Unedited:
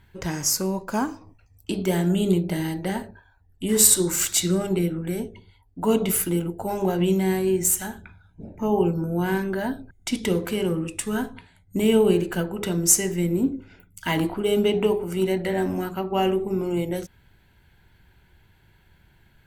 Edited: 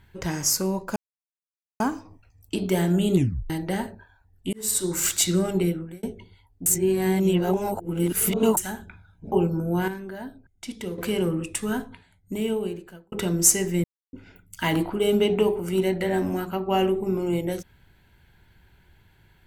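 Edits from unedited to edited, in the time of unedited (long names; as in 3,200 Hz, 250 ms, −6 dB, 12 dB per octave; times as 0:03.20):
0:00.96: splice in silence 0.84 s
0:02.31: tape stop 0.35 s
0:03.69–0:04.23: fade in
0:04.83–0:05.19: fade out
0:05.82–0:07.73: reverse
0:08.48–0:08.76: remove
0:09.32–0:10.42: clip gain −9.5 dB
0:10.99–0:12.56: fade out
0:13.28–0:13.57: silence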